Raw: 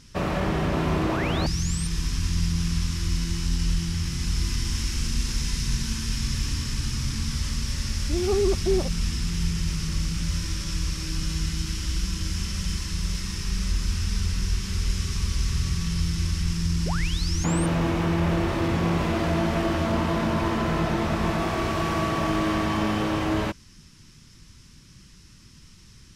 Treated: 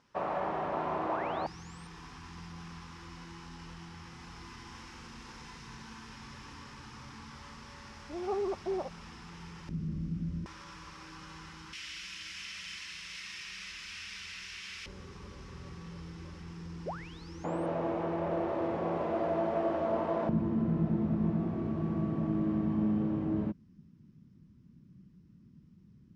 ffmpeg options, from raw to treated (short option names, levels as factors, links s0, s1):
-af "asetnsamples=n=441:p=0,asendcmd='9.69 bandpass f 220;10.46 bandpass f 940;11.73 bandpass f 2400;14.86 bandpass f 590;20.29 bandpass f 200',bandpass=f=820:t=q:w=1.9:csg=0"